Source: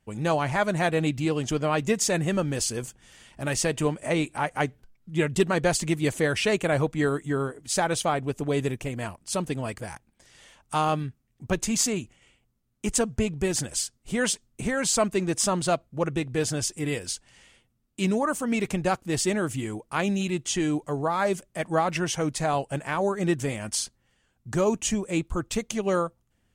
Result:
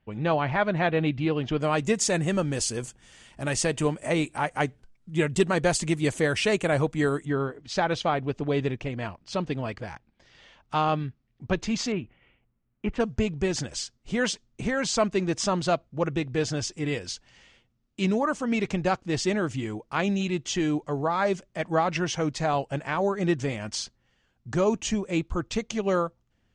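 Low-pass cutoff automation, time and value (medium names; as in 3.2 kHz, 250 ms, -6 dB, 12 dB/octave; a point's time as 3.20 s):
low-pass 24 dB/octave
3.8 kHz
from 1.60 s 9.5 kHz
from 7.25 s 4.9 kHz
from 11.92 s 2.7 kHz
from 13.00 s 6.2 kHz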